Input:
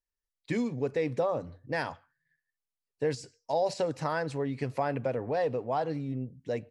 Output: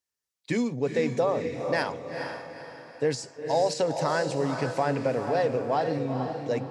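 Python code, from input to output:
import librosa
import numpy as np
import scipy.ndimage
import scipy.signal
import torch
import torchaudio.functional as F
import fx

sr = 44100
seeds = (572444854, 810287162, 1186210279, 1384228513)

p1 = scipy.signal.sosfilt(scipy.signal.butter(2, 110.0, 'highpass', fs=sr, output='sos'), x)
p2 = fx.peak_eq(p1, sr, hz=6500.0, db=5.0, octaves=1.3)
p3 = p2 + fx.echo_diffused(p2, sr, ms=460, feedback_pct=41, wet_db=-6.0, dry=0)
y = F.gain(torch.from_numpy(p3), 3.5).numpy()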